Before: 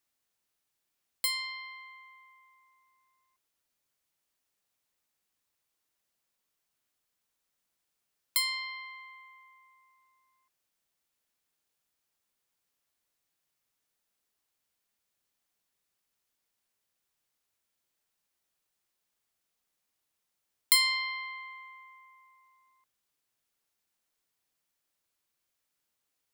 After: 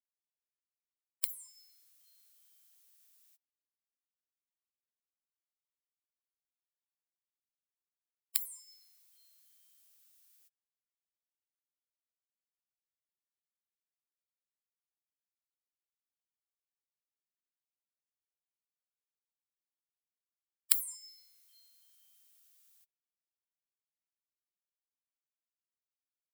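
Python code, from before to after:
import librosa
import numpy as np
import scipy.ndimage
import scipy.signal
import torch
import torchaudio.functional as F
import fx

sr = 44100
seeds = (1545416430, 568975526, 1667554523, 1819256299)

y = fx.spec_gate(x, sr, threshold_db=-25, keep='weak')
y = fx.tilt_eq(y, sr, slope=4.5)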